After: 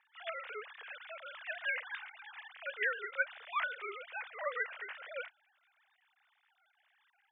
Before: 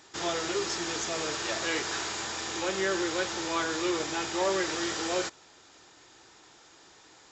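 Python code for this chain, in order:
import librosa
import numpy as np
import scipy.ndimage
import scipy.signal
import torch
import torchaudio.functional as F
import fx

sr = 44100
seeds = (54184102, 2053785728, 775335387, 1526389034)

y = fx.sine_speech(x, sr)
y = fx.bandpass_q(y, sr, hz=2100.0, q=1.4)
y = fx.air_absorb(y, sr, metres=56.0)
y = fx.upward_expand(y, sr, threshold_db=-49.0, expansion=1.5)
y = y * 10.0 ** (1.5 / 20.0)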